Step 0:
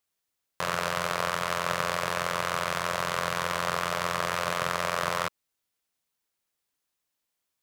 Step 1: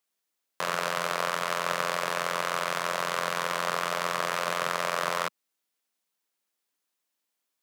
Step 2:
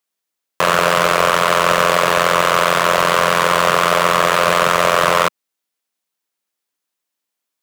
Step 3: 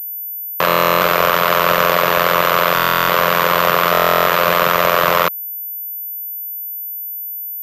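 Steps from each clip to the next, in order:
HPF 180 Hz 24 dB/oct
sample leveller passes 3; gain +7.5 dB
stuck buffer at 0.67/2.74/3.92, samples 1024, times 14; pulse-width modulation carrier 14000 Hz

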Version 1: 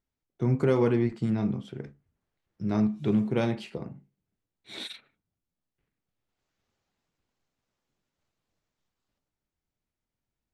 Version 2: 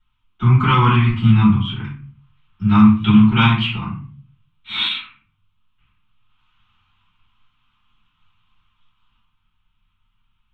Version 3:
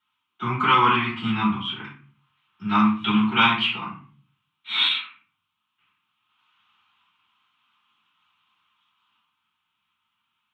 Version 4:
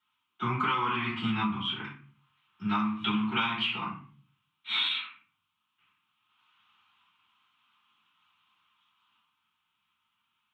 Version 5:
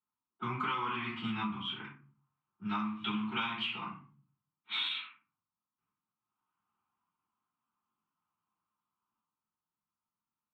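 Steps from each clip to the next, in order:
EQ curve 100 Hz 0 dB, 270 Hz -6 dB, 550 Hz -27 dB, 1100 Hz +13 dB, 1800 Hz -2 dB, 3200 Hz +14 dB, 4800 Hz -13 dB, 7500 Hz -16 dB; reverb RT60 0.40 s, pre-delay 3 ms, DRR -9 dB; gain +3.5 dB
HPF 360 Hz 12 dB/oct
compressor 12:1, threshold -23 dBFS, peak gain reduction 11 dB; gain -2 dB
low-pass opened by the level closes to 660 Hz, open at -27.5 dBFS; bell 85 Hz -4.5 dB 0.92 oct; gain -6 dB

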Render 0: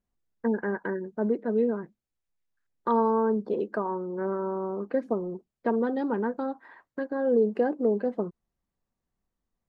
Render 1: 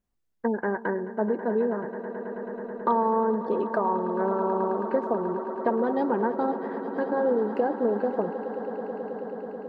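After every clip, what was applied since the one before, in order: compressor, threshold -25 dBFS, peak gain reduction 7 dB; swelling echo 0.108 s, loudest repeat 8, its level -16 dB; dynamic EQ 790 Hz, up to +7 dB, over -45 dBFS, Q 1.2; gain +1.5 dB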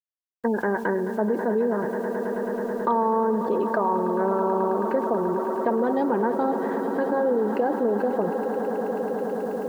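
bit-crush 10-bit; fast leveller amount 50%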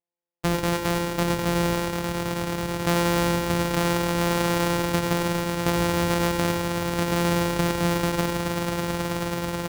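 sample sorter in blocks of 256 samples; echo 95 ms -8 dB

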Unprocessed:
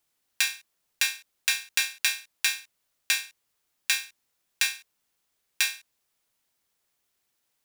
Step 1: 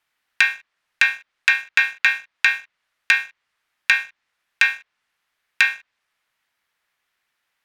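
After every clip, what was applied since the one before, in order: treble ducked by the level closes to 2100 Hz, closed at -27 dBFS; EQ curve 410 Hz 0 dB, 1800 Hz +14 dB, 7200 Hz -3 dB; sample leveller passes 1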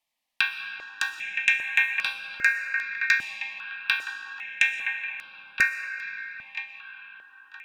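band-limited delay 0.968 s, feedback 34%, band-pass 1400 Hz, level -7 dB; reverb RT60 6.3 s, pre-delay 85 ms, DRR 5 dB; step phaser 2.5 Hz 390–6800 Hz; gain -3 dB

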